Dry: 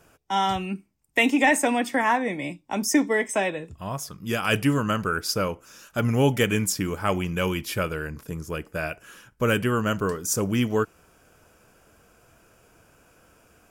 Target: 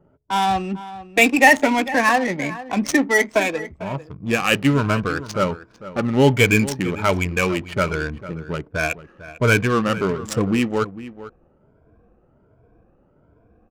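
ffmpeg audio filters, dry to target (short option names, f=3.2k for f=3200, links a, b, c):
-filter_complex "[0:a]afftfilt=real='re*pow(10,13/40*sin(2*PI*(1.7*log(max(b,1)*sr/1024/100)/log(2)-(1.3)*(pts-256)/sr)))':imag='im*pow(10,13/40*sin(2*PI*(1.7*log(max(b,1)*sr/1024/100)/log(2)-(1.3)*(pts-256)/sr)))':win_size=1024:overlap=0.75,adynamicequalizer=threshold=0.00708:dfrequency=2300:dqfactor=7.8:tfrequency=2300:tqfactor=7.8:attack=5:release=100:ratio=0.375:range=3.5:mode=boostabove:tftype=bell,adynamicsmooth=sensitivity=3:basefreq=580,asplit=2[a][b];[b]adelay=449,volume=-15dB,highshelf=f=4k:g=-10.1[c];[a][c]amix=inputs=2:normalize=0,volume=3dB"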